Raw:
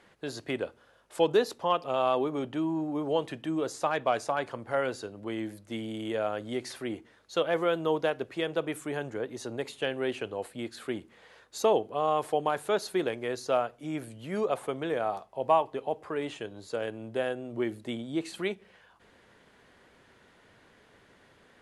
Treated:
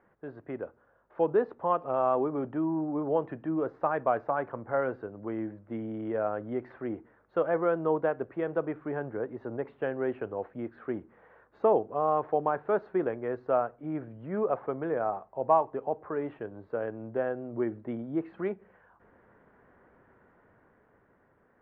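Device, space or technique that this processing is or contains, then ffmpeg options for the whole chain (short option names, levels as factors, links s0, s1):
action camera in a waterproof case: -af "lowpass=f=1600:w=0.5412,lowpass=f=1600:w=1.3066,dynaudnorm=f=120:g=21:m=1.78,volume=0.596" -ar 48000 -c:a aac -b:a 128k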